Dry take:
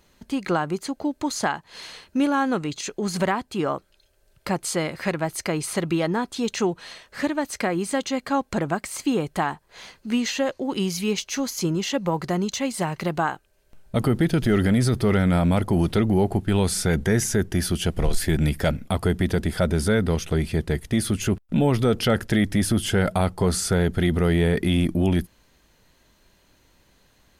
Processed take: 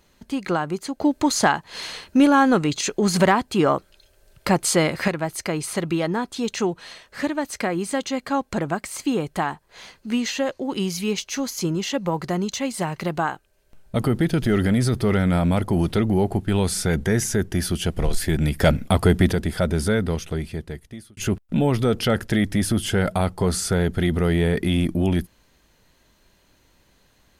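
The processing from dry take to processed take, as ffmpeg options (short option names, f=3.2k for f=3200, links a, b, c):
-filter_complex "[0:a]asettb=1/sr,asplit=3[a][b][c];[a]atrim=end=1.004[d];[b]atrim=start=1:end=5.08,asetpts=PTS-STARTPTS,afade=t=in:d=0.004:c=qsin,afade=t=out:st=4.076:d=0.004:c=qsin,acontrast=67[e];[c]atrim=start=5.076[f];[d][e]acrossfade=d=0.004:c1=hsin:c2=qsin[g];[g][f]acrossfade=d=0.004:c1=qsin:c2=hsin,asettb=1/sr,asplit=3[h][i][j];[h]atrim=end=18.604[k];[i]atrim=start=18.6:end=19.33,asetpts=PTS-STARTPTS,afade=t=in:d=0.004:c=qsin,afade=t=out:st=0.726:d=0.004:c=qsin,acontrast=45[l];[j]atrim=start=19.326[m];[k][l]acrossfade=d=0.004:c1=hsin:c2=qsin[n];[n][m]acrossfade=d=0.004:c1=qsin:c2=hsin,asplit=2[o][p];[o]atrim=end=21.17,asetpts=PTS-STARTPTS,afade=t=out:st=19.89:d=1.28[q];[p]atrim=start=21.17,asetpts=PTS-STARTPTS,afade=t=in:d=0.004:c=hsin[r];[q][r]concat=n=2:v=0:a=1"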